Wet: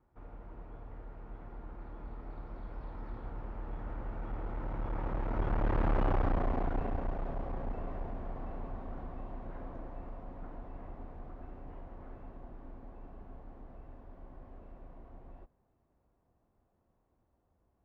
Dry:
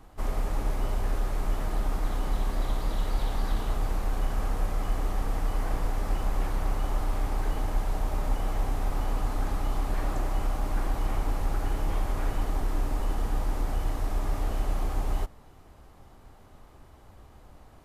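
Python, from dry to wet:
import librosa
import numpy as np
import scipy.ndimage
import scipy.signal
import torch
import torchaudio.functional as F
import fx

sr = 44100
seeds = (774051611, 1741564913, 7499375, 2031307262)

y = fx.doppler_pass(x, sr, speed_mps=41, closest_m=12.0, pass_at_s=6.02)
y = fx.highpass(y, sr, hz=250.0, slope=6)
y = fx.tilt_eq(y, sr, slope=-3.0)
y = fx.clip_asym(y, sr, top_db=-42.0, bottom_db=-28.5)
y = scipy.signal.sosfilt(scipy.signal.butter(2, 2300.0, 'lowpass', fs=sr, output='sos'), y)
y = y * 10.0 ** (8.0 / 20.0)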